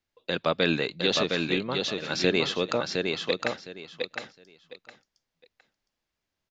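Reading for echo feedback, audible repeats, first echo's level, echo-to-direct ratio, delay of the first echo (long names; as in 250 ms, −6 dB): 21%, 3, −4.0 dB, −4.0 dB, 711 ms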